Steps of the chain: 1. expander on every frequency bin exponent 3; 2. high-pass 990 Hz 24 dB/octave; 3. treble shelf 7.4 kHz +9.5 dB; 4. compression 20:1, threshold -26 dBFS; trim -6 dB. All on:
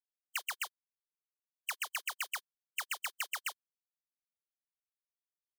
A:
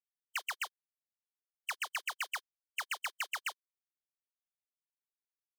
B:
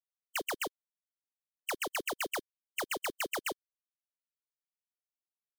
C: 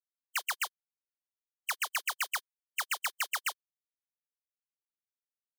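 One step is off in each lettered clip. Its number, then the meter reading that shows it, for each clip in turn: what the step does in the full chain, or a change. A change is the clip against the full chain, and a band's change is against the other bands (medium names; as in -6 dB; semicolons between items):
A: 3, 8 kHz band -4.5 dB; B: 2, 500 Hz band +19.5 dB; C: 4, mean gain reduction 4.5 dB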